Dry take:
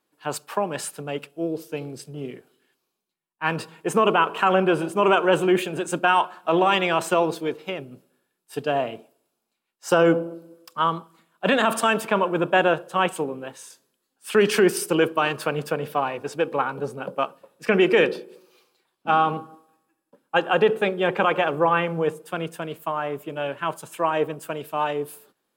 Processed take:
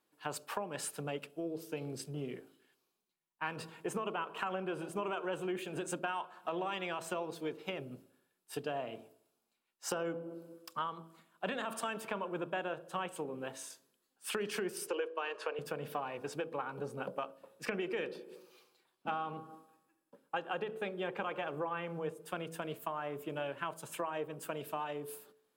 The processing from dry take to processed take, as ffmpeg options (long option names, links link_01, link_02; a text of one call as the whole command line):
ffmpeg -i in.wav -filter_complex "[0:a]asettb=1/sr,asplit=3[link_01][link_02][link_03];[link_01]atrim=end=14.874[link_04];[link_02]atrim=start=14.87:end=15.59,asetpts=PTS-STARTPTS,afade=type=in:duration=0.004:curve=qsin,afade=type=out:start_time=0.716:duration=0.004:curve=qsin,highpass=frequency=350:width=0.5412,highpass=frequency=350:width=1.3066,equalizer=frequency=470:width_type=q:width=4:gain=9,equalizer=frequency=1000:width_type=q:width=4:gain=5,equalizer=frequency=1700:width_type=q:width=4:gain=5,equalizer=frequency=2700:width_type=q:width=4:gain=5,equalizer=frequency=8500:width_type=q:width=4:gain=-8,lowpass=frequency=8900:width=0.5412,lowpass=frequency=8900:width=1.3066[link_05];[link_03]atrim=start=15.586[link_06];[link_04][link_05]acrossfade=duration=0.004:curve1=hsin:curve2=qsin[link_07];[link_07][link_06]acrossfade=duration=0.004:curve1=qsin:curve2=hsin,acompressor=threshold=-31dB:ratio=6,bandreject=frequency=54.49:width_type=h:width=4,bandreject=frequency=108.98:width_type=h:width=4,bandreject=frequency=163.47:width_type=h:width=4,bandreject=frequency=217.96:width_type=h:width=4,bandreject=frequency=272.45:width_type=h:width=4,bandreject=frequency=326.94:width_type=h:width=4,bandreject=frequency=381.43:width_type=h:width=4,bandreject=frequency=435.92:width_type=h:width=4,bandreject=frequency=490.41:width_type=h:width=4,bandreject=frequency=544.9:width_type=h:width=4,bandreject=frequency=599.39:width_type=h:width=4,bandreject=frequency=653.88:width_type=h:width=4,volume=-4dB" out.wav